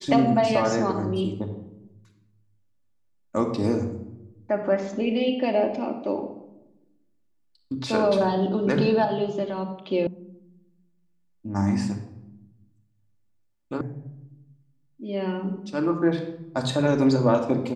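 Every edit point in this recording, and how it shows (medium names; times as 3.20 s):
10.07 s: sound stops dead
13.81 s: sound stops dead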